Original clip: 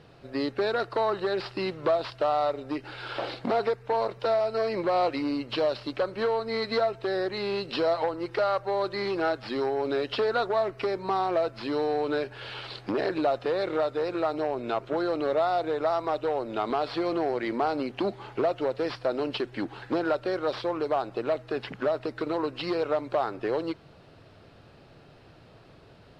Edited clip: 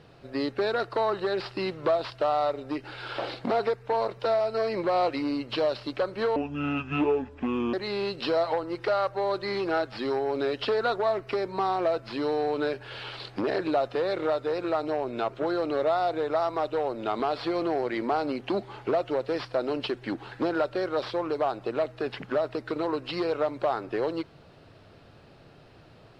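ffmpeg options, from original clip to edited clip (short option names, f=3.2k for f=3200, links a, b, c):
-filter_complex "[0:a]asplit=3[a][b][c];[a]atrim=end=6.364[d];[b]atrim=start=6.36:end=7.24,asetpts=PTS-STARTPTS,asetrate=28224,aresample=44100[e];[c]atrim=start=7.236[f];[d][e]acrossfade=d=0.004:c1=hsin:c2=hsin[g];[g][f]acrossfade=d=0.004:c1=hsin:c2=hsin"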